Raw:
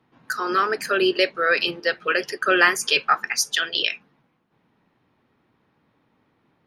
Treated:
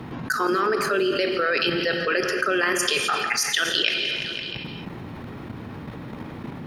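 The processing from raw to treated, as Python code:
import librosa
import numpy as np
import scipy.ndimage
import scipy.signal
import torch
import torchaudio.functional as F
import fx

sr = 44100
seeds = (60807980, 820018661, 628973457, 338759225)

p1 = fx.level_steps(x, sr, step_db=13)
p2 = fx.low_shelf(p1, sr, hz=330.0, db=9.0)
p3 = p2 + fx.echo_feedback(p2, sr, ms=170, feedback_pct=51, wet_db=-19, dry=0)
p4 = fx.rev_gated(p3, sr, seeds[0], gate_ms=300, shape='flat', drr_db=9.5)
y = fx.env_flatten(p4, sr, amount_pct=70)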